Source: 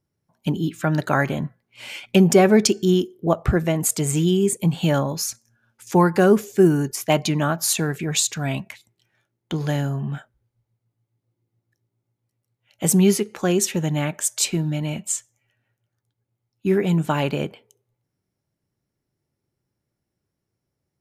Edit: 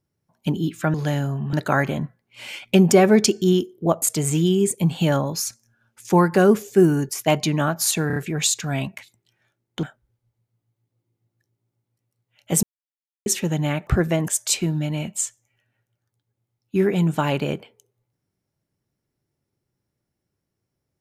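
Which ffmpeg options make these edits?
-filter_complex "[0:a]asplit=12[a][b][c][d][e][f][g][h][i][j][k][l];[a]atrim=end=0.942[m];[b]atrim=start=9.558:end=10.152[n];[c]atrim=start=0.938:end=3.432[o];[d]atrim=start=3.838:end=7.922[p];[e]atrim=start=7.888:end=7.922[q];[f]atrim=start=7.888:end=7.922[r];[g]atrim=start=7.888:end=9.562[s];[h]atrim=start=10.148:end=12.95,asetpts=PTS-STARTPTS,afade=t=out:st=2.798:d=0.004:c=hsin[t];[i]atrim=start=12.95:end=13.58,asetpts=PTS-STARTPTS,volume=0[u];[j]atrim=start=13.58:end=14.192,asetpts=PTS-STARTPTS,afade=t=in:d=0.004:c=hsin[v];[k]atrim=start=3.428:end=3.842[w];[l]atrim=start=14.188[x];[m][n]acrossfade=d=0.004:c1=hsin:c2=hsin[y];[y][o]acrossfade=d=0.004:c1=hsin:c2=hsin[z];[z][p]acrossfade=d=0.004:c1=hsin:c2=hsin[aa];[aa][q]acrossfade=d=0.004:c1=hsin:c2=hsin[ab];[ab][r]acrossfade=d=0.004:c1=hsin:c2=hsin[ac];[ac][s]acrossfade=d=0.004:c1=hsin:c2=hsin[ad];[t][u][v]concat=n=3:v=0:a=1[ae];[ad][ae]acrossfade=d=0.004:c1=hsin:c2=hsin[af];[af][w]acrossfade=d=0.004:c1=hsin:c2=hsin[ag];[ag][x]acrossfade=d=0.004:c1=hsin:c2=hsin"

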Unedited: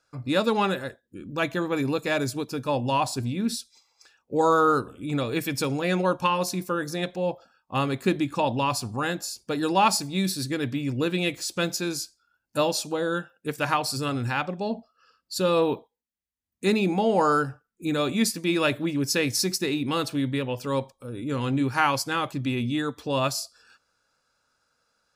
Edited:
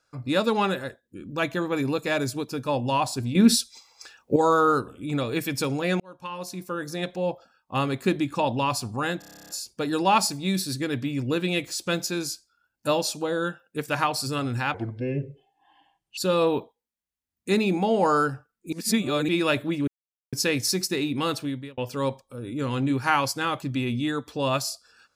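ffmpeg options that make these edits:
-filter_complex "[0:a]asplit=20[a][b][c][d][e][f][g][h][i][j][k][l][m][n][o][p][q][r][s][t];[a]atrim=end=3.352[u];[b]atrim=start=3.348:end=4.362,asetpts=PTS-STARTPTS,volume=10dB[v];[c]atrim=start=4.358:end=6,asetpts=PTS-STARTPTS,afade=t=out:st=1.638:d=0.004:c=hsin[w];[d]atrim=start=6:end=9.222,asetpts=PTS-STARTPTS,afade=t=in:d=1.15[x];[e]atrim=start=9.188:end=9.222[y];[f]atrim=start=9.188:end=9.222[z];[g]atrim=start=9.188:end=9.222[aa];[h]atrim=start=9.188:end=9.222[ab];[i]atrim=start=9.188:end=9.222[ac];[j]atrim=start=9.188:end=9.222[ad];[k]atrim=start=9.188:end=9.222[ae];[l]atrim=start=9.188:end=9.222[af];[m]atrim=start=9.188:end=9.222[ag];[n]atrim=start=9.188:end=14.444[ah];[o]atrim=start=14.44:end=15.33,asetpts=PTS-STARTPTS,asetrate=27342,aresample=44100[ai];[p]atrim=start=15.326:end=17.882[aj];[q]atrim=start=17.878:end=18.442,asetpts=PTS-STARTPTS,areverse[ak];[r]atrim=start=18.438:end=19.03,asetpts=PTS-STARTPTS,afade=t=out:st=0.588:d=0.004:c=hsin,apad=pad_dur=0.45[al];[s]atrim=start=19.03:end=20.48,asetpts=PTS-STARTPTS,afade=t=in:d=0.004:c=hsin,afade=t=out:st=1.02:d=0.43[am];[t]atrim=start=20.48,asetpts=PTS-STARTPTS,afade=t=in:d=0.004:c=hsin[an];[u][v]acrossfade=d=0.004:c1=hsin:c2=hsin[ao];[w][x]concat=n=2:v=0:a=1[ap];[ao][ap]acrossfade=d=0.004:c1=hsin:c2=hsin[aq];[aq][y]acrossfade=d=0.004:c1=hsin:c2=hsin[ar];[ar][z]acrossfade=d=0.004:c1=hsin:c2=hsin[as];[as][aa]acrossfade=d=0.004:c1=hsin:c2=hsin[at];[at][ab]acrossfade=d=0.004:c1=hsin:c2=hsin[au];[au][ac]acrossfade=d=0.004:c1=hsin:c2=hsin[av];[av][ad]acrossfade=d=0.004:c1=hsin:c2=hsin[aw];[aw][ae]acrossfade=d=0.004:c1=hsin:c2=hsin[ax];[ax][af]acrossfade=d=0.004:c1=hsin:c2=hsin[ay];[ay][ag]acrossfade=d=0.004:c1=hsin:c2=hsin[az];[az][ah]acrossfade=d=0.004:c1=hsin:c2=hsin[ba];[ba][ai]acrossfade=d=0.004:c1=hsin:c2=hsin[bb];[bb][aj]acrossfade=d=0.004:c1=hsin:c2=hsin[bc];[bc][ak]acrossfade=d=0.004:c1=hsin:c2=hsin[bd];[al][am][an]concat=n=3:v=0:a=1[be];[bd][be]acrossfade=d=0.004:c1=hsin:c2=hsin"

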